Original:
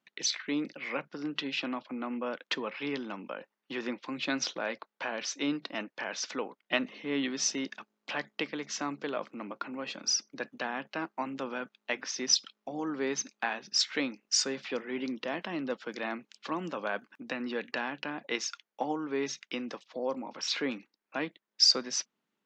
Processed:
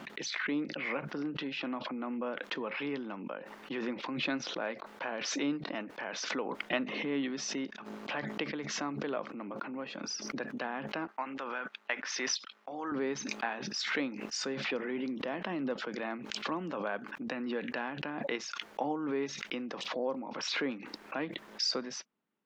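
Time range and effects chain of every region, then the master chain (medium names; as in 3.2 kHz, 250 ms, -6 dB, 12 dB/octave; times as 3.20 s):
11.07–12.92 s: gate -47 dBFS, range -19 dB + high-pass 800 Hz 6 dB/octave + peaking EQ 1.6 kHz +5.5 dB 1.7 oct
whole clip: low-pass 1.9 kHz 6 dB/octave; swell ahead of each attack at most 32 dB/s; trim -1.5 dB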